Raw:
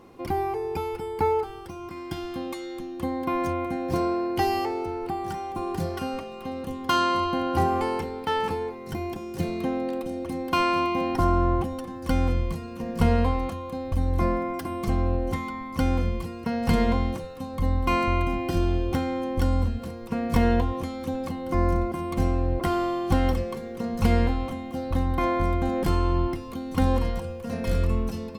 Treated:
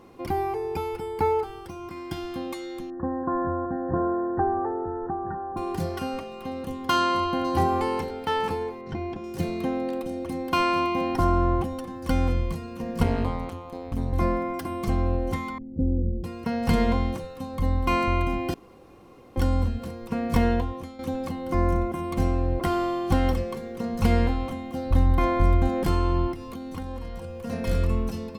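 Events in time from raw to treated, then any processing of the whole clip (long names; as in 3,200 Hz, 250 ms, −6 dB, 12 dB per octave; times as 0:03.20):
0:02.90–0:05.57: linear-phase brick-wall low-pass 1,900 Hz
0:06.91–0:07.57: delay throw 530 ms, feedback 30%, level −13.5 dB
0:08.81–0:09.24: high-frequency loss of the air 170 metres
0:13.03–0:14.13: amplitude modulation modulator 180 Hz, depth 95%
0:15.58–0:16.24: inverse Chebyshev low-pass filter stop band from 950 Hz
0:18.54–0:19.36: fill with room tone
0:20.36–0:20.99: fade out, to −10.5 dB
0:21.61–0:22.04: notch filter 4,600 Hz, Q 5
0:24.85–0:25.68: low-shelf EQ 85 Hz +10 dB
0:26.32–0:27.39: downward compressor 4 to 1, threshold −32 dBFS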